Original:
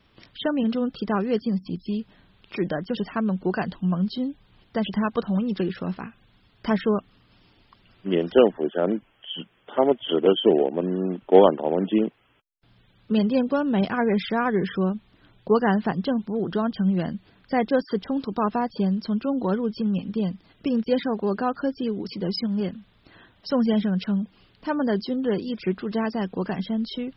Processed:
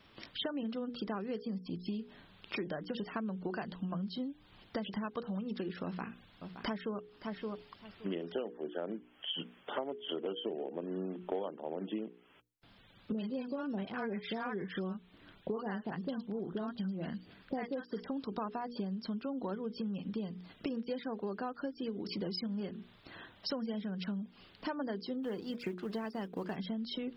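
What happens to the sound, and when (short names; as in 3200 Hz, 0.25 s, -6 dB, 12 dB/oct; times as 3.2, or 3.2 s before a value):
5.84–6.98 echo throw 0.57 s, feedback 15%, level -15 dB
13.12–18.04 three bands offset in time lows, mids, highs 40/150 ms, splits 860/5000 Hz
25.23–26.56 G.711 law mismatch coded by A
whole clip: low shelf 99 Hz -8 dB; notches 60/120/180/240/300/360/420/480 Hz; compressor 10:1, threshold -36 dBFS; gain +1 dB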